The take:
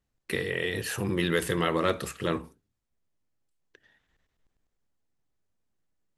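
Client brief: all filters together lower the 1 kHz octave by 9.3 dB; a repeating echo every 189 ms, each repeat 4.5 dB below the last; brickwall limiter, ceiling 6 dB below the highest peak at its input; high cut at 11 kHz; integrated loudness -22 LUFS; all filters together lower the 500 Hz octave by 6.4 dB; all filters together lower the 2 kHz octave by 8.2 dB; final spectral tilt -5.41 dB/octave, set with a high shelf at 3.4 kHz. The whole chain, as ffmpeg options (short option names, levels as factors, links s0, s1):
-af "lowpass=11000,equalizer=f=500:t=o:g=-6,equalizer=f=1000:t=o:g=-8.5,equalizer=f=2000:t=o:g=-5,highshelf=f=3400:g=-6.5,alimiter=limit=0.0794:level=0:latency=1,aecho=1:1:189|378|567|756|945|1134|1323|1512|1701:0.596|0.357|0.214|0.129|0.0772|0.0463|0.0278|0.0167|0.01,volume=3.98"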